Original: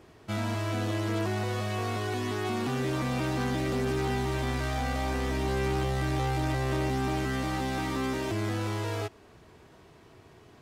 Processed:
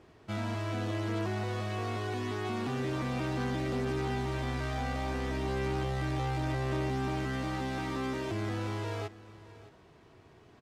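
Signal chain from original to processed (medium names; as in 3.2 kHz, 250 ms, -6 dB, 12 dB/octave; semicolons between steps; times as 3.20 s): treble shelf 8.6 kHz -11 dB; delay 618 ms -18 dB; trim -3.5 dB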